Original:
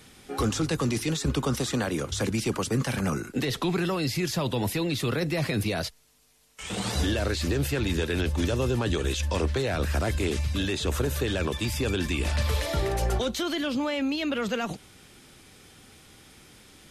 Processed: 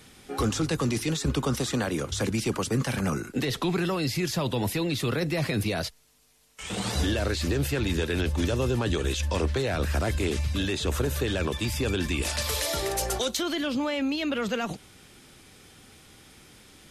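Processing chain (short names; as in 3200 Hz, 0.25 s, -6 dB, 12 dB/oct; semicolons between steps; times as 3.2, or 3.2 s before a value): 12.22–13.37 tone controls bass -9 dB, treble +10 dB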